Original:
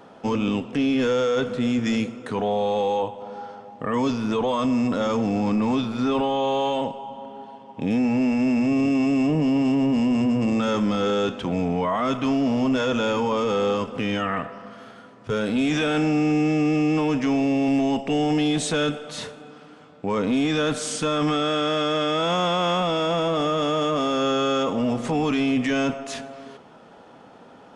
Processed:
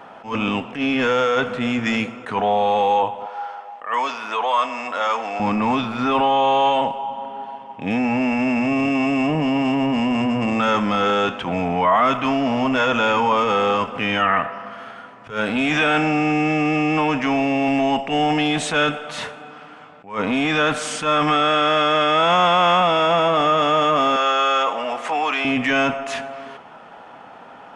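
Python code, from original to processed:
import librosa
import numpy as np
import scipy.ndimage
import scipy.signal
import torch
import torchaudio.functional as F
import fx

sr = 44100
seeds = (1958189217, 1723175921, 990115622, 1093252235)

y = fx.highpass(x, sr, hz=630.0, slope=12, at=(3.26, 5.4))
y = fx.highpass(y, sr, hz=530.0, slope=12, at=(24.16, 25.45))
y = fx.band_shelf(y, sr, hz=1400.0, db=9.5, octaves=2.5)
y = fx.attack_slew(y, sr, db_per_s=160.0)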